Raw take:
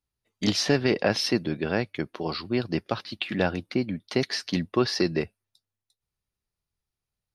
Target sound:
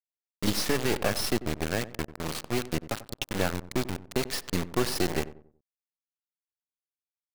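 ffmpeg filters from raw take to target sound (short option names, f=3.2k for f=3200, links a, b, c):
-filter_complex "[0:a]aeval=exprs='if(lt(val(0),0),0.251*val(0),val(0))':c=same,acrusher=bits=4:mix=0:aa=0.000001,asplit=2[a][b];[b]adelay=93,lowpass=f=1k:p=1,volume=-14dB,asplit=2[c][d];[d]adelay=93,lowpass=f=1k:p=1,volume=0.38,asplit=2[e][f];[f]adelay=93,lowpass=f=1k:p=1,volume=0.38,asplit=2[g][h];[h]adelay=93,lowpass=f=1k:p=1,volume=0.38[i];[a][c][e][g][i]amix=inputs=5:normalize=0"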